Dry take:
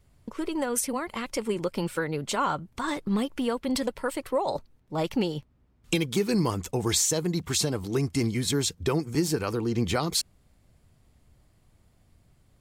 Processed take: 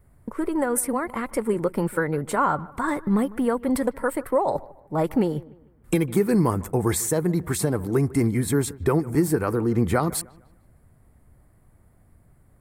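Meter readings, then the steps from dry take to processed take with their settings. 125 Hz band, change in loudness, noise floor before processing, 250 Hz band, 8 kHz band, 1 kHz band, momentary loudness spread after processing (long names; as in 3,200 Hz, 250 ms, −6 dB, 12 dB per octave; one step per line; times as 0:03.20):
+5.0 dB, +4.0 dB, −64 dBFS, +5.0 dB, −1.0 dB, +5.0 dB, 6 LU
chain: flat-topped bell 4,200 Hz −15 dB
on a send: delay with a low-pass on its return 151 ms, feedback 35%, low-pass 2,500 Hz, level −20.5 dB
on the sum: level +5 dB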